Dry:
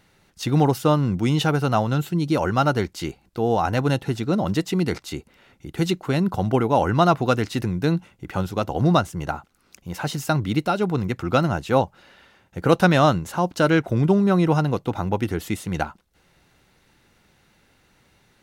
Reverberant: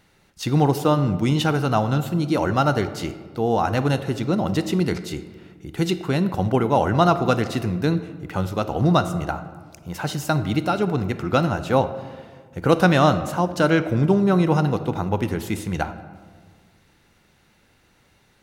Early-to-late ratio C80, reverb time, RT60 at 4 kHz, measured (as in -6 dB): 13.5 dB, 1.6 s, 0.90 s